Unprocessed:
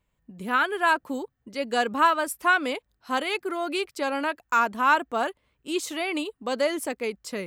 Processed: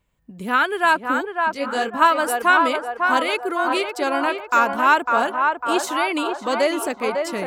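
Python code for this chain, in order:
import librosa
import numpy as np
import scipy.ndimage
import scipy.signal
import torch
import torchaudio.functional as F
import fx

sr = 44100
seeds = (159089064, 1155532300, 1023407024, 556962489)

y = fx.echo_banded(x, sr, ms=551, feedback_pct=64, hz=860.0, wet_db=-3.0)
y = fx.detune_double(y, sr, cents=fx.line((1.54, 23.0), (2.0, 42.0)), at=(1.54, 2.0), fade=0.02)
y = F.gain(torch.from_numpy(y), 4.5).numpy()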